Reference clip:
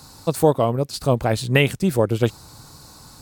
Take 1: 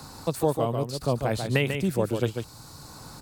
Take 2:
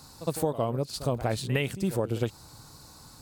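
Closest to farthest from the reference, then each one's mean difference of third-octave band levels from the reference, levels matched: 2, 1; 3.5, 5.5 decibels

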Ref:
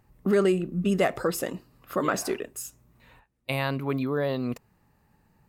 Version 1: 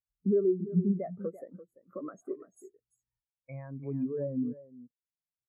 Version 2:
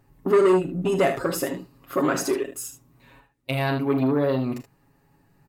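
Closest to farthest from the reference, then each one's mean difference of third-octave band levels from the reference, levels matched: 2, 1; 3.5, 14.0 decibels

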